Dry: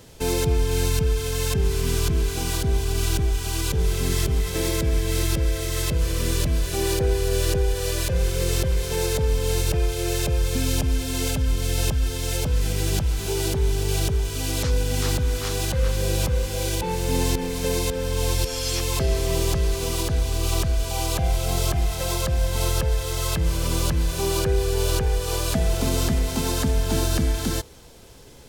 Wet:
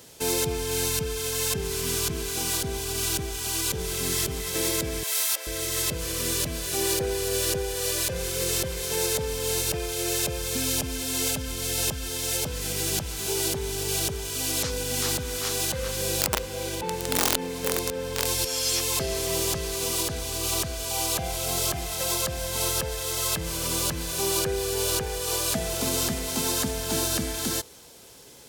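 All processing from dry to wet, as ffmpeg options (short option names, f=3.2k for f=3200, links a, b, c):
-filter_complex "[0:a]asettb=1/sr,asplit=3[a][b][c];[a]atrim=end=5.034[d];[b]atrim=start=5.03:end=5.47,asetpts=PTS-STARTPTS,afade=t=in:d=0.004:c=qsin,afade=t=out:st=0.436:d=0.004:c=qsin,highpass=f=630:w=0.5412,highpass=f=630:w=1.3066,highshelf=f=11k:g=6.5[e];[c]atrim=start=5.466[f];[d][e]acrossfade=d=0.004:c1=hsin:c2=qsin[g];[g][f]acrossfade=d=0.004:c1=qsin:c2=hsin,asettb=1/sr,asplit=3[h][i][j];[h]atrim=end=16.214[k];[i]atrim=start=16.21:end=18.26,asetpts=PTS-STARTPTS,afade=t=in:d=0.004:c=qsin,afade=t=out:st=2.046:d=0.004:c=qsin,highshelf=f=3.4k:g=-10,aeval=exprs='(mod(5.62*val(0)+1,2)-1)/5.62':c=same[l];[j]atrim=start=18.256[m];[k][l]acrossfade=d=0.004:c1=hsin:c2=qsin[n];[n][m]acrossfade=d=0.004:c1=qsin:c2=hsin,highpass=f=230:p=1,highshelf=f=4.5k:g=7.5,volume=-2dB"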